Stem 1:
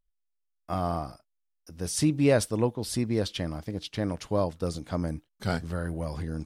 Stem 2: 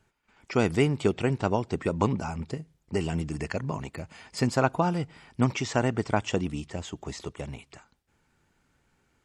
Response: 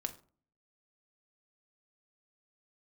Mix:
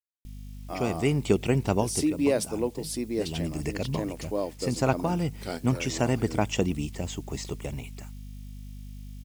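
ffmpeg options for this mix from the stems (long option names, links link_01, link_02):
-filter_complex "[0:a]lowshelf=frequency=200:width_type=q:width=1.5:gain=-12,volume=-7.5dB,asplit=2[link_01][link_02];[1:a]agate=range=-15dB:threshold=-53dB:ratio=16:detection=peak,aeval=exprs='val(0)+0.00794*(sin(2*PI*50*n/s)+sin(2*PI*2*50*n/s)/2+sin(2*PI*3*50*n/s)/3+sin(2*PI*4*50*n/s)/4+sin(2*PI*5*50*n/s)/5)':channel_layout=same,adelay=250,volume=-3dB[link_03];[link_02]apad=whole_len=418611[link_04];[link_03][link_04]sidechaincompress=threshold=-38dB:ratio=8:attack=29:release=440[link_05];[link_01][link_05]amix=inputs=2:normalize=0,tiltshelf=frequency=1300:gain=5.5,acrusher=bits=10:mix=0:aa=0.000001,aexciter=amount=2.7:drive=5.8:freq=2100"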